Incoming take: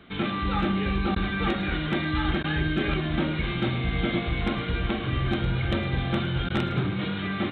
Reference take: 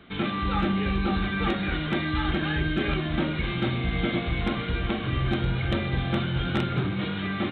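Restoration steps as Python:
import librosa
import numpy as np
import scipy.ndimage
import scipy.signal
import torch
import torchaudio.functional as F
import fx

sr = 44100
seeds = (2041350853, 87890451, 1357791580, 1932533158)

y = fx.fix_interpolate(x, sr, at_s=(1.15, 2.43, 6.49), length_ms=10.0)
y = fx.fix_echo_inverse(y, sr, delay_ms=110, level_db=-16.0)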